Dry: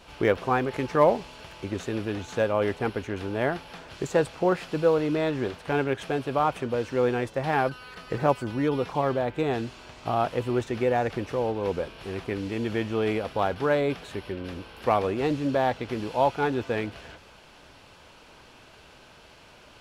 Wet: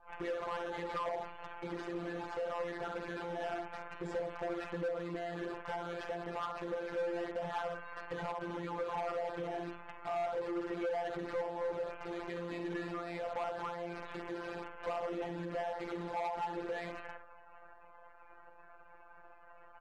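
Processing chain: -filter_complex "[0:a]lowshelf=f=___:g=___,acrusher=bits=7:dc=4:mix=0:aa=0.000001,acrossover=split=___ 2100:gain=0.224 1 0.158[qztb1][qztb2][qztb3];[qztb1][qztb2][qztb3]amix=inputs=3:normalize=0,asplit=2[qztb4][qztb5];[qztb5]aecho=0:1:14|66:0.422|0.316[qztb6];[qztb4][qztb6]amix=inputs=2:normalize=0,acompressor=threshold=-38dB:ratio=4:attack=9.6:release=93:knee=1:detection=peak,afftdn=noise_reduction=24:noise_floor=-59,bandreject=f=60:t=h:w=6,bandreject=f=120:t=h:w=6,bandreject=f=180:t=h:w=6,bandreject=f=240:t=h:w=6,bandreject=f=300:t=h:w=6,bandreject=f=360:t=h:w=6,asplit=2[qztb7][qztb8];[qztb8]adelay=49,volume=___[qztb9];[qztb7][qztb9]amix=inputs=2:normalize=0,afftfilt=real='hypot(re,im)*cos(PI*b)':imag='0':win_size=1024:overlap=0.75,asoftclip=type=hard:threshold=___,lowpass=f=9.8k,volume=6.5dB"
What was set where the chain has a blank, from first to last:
110, 4.5, 500, -12dB, -38.5dB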